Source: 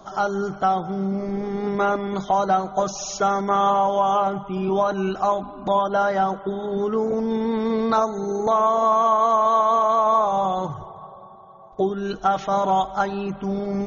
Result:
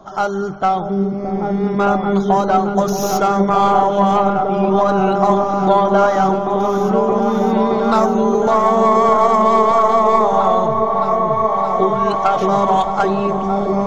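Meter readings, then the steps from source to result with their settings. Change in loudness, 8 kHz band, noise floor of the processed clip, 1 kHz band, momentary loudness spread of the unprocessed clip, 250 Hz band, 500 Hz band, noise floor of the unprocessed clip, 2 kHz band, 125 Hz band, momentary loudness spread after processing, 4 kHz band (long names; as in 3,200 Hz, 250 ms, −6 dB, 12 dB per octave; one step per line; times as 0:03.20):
+6.5 dB, can't be measured, −22 dBFS, +6.0 dB, 9 LU, +8.5 dB, +7.5 dB, −42 dBFS, +6.0 dB, +9.0 dB, 6 LU, +4.5 dB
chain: stylus tracing distortion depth 0.046 ms
on a send: echo whose low-pass opens from repeat to repeat 620 ms, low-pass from 400 Hz, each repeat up 1 octave, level 0 dB
on the sum: one half of a high-frequency compander decoder only
level +4 dB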